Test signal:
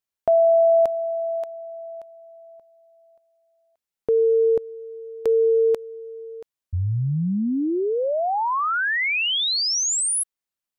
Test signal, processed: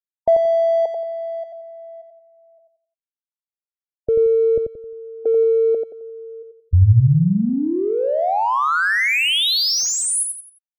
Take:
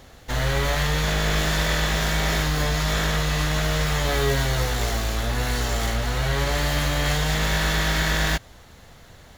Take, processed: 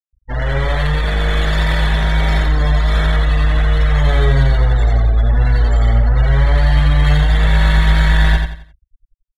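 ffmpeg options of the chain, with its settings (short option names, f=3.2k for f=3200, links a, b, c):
-filter_complex "[0:a]afftfilt=real='re*gte(hypot(re,im),0.0631)':imag='im*gte(hypot(re,im),0.0631)':win_size=1024:overlap=0.75,asubboost=boost=3.5:cutoff=130,acrossover=split=7000[a][b];[a]adynamicsmooth=sensitivity=7:basefreq=3.8k[c];[c][b]amix=inputs=2:normalize=0,aecho=1:1:88|176|264|352:0.562|0.191|0.065|0.0221,volume=3.5dB"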